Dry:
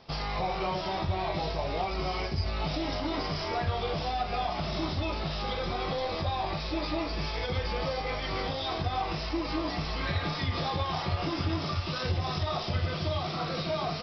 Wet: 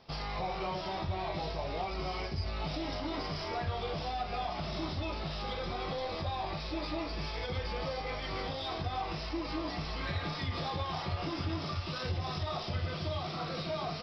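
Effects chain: in parallel at -11 dB: soft clip -27 dBFS, distortion -15 dB; on the sum: gain -6.5 dB

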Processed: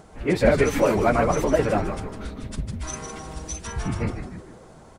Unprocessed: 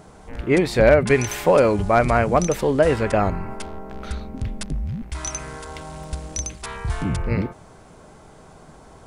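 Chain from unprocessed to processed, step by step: frequency-shifting echo 0.278 s, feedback 45%, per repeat -140 Hz, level -6.5 dB; plain phase-vocoder stretch 0.55×

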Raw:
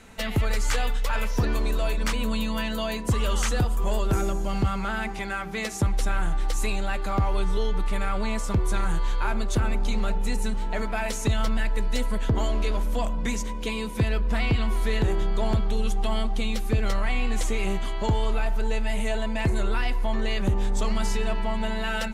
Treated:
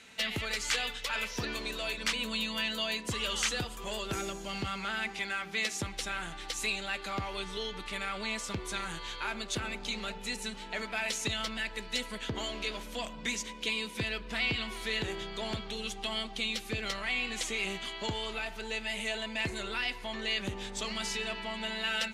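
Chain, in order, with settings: weighting filter D; gain -8.5 dB

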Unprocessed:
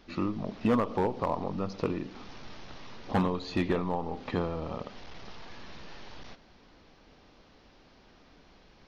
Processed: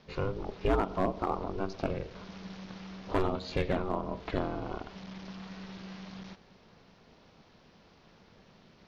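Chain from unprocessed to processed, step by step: ring modulator 190 Hz; gain +1.5 dB

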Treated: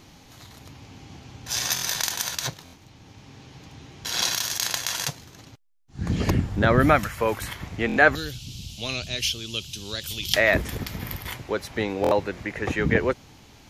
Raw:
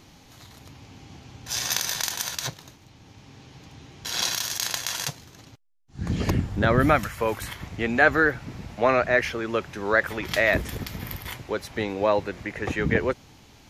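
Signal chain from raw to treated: 8.15–10.34 EQ curve 110 Hz 0 dB, 600 Hz -19 dB, 1900 Hz -21 dB, 3000 Hz +11 dB; stuck buffer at 1.74/2.64/7.87/12.02, samples 1024, times 3; gain +1.5 dB

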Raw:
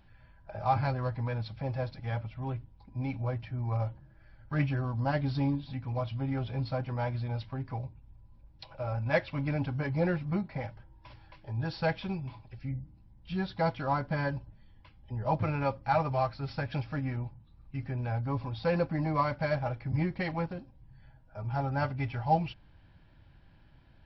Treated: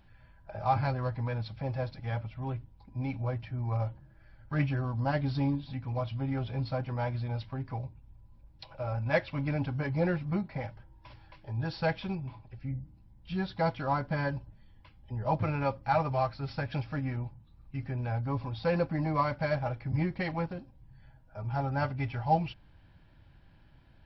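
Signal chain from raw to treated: 12.15–12.81 high shelf 3300 Hz -9.5 dB

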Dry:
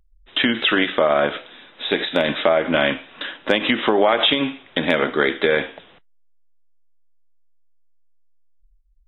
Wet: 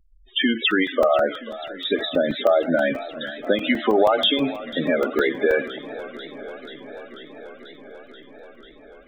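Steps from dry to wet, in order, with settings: loudest bins only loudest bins 16; crackling interface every 0.16 s, samples 128, zero, from 0.71; warbling echo 0.488 s, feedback 78%, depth 124 cents, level -16.5 dB

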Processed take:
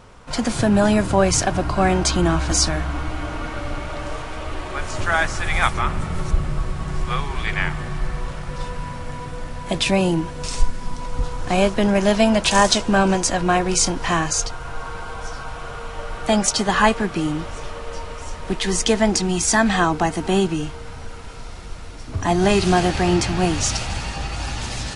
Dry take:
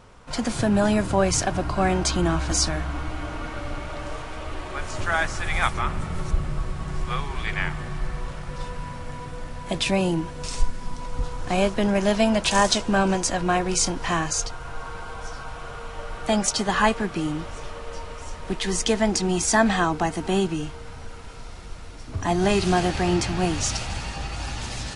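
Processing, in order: 19.14–19.74 dynamic EQ 540 Hz, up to -5 dB, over -31 dBFS, Q 0.7; gain +4 dB

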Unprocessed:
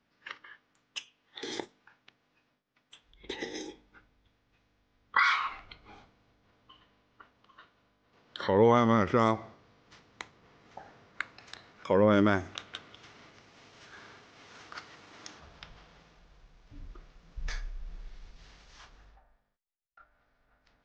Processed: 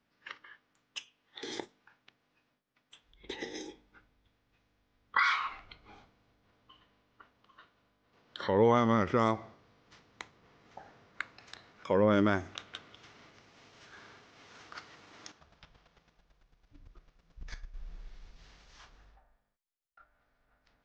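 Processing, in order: 15.3–17.74 chopper 9 Hz, depth 65%, duty 15%; gain -2.5 dB

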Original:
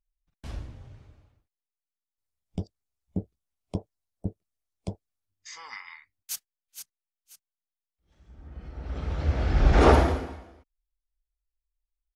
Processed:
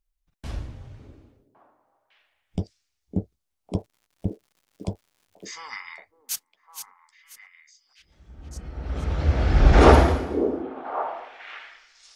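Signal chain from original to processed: delay with a stepping band-pass 0.555 s, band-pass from 340 Hz, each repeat 1.4 oct, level -6 dB; 3.77–5.51 crackle 190/s -55 dBFS; gain +4.5 dB

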